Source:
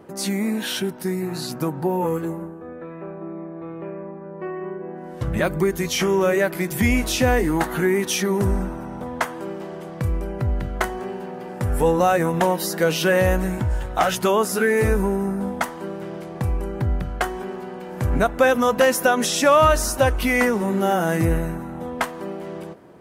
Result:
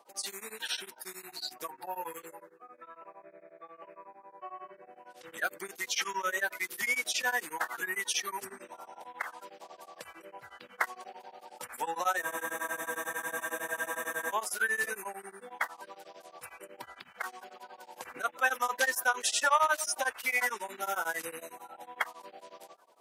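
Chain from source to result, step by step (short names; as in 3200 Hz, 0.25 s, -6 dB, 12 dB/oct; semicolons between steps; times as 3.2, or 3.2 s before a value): bin magnitudes rounded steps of 30 dB; HPF 1000 Hz 12 dB/oct; spectral freeze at 12.24, 2.08 s; beating tremolo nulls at 11 Hz; gain -3.5 dB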